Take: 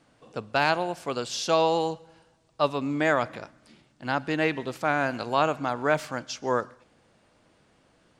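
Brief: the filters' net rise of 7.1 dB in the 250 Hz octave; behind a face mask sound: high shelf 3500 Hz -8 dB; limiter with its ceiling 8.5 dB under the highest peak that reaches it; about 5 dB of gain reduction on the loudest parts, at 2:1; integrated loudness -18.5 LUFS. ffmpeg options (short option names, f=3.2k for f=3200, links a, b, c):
-af "equalizer=f=250:t=o:g=9,acompressor=threshold=-25dB:ratio=2,alimiter=limit=-20dB:level=0:latency=1,highshelf=f=3.5k:g=-8,volume=13.5dB"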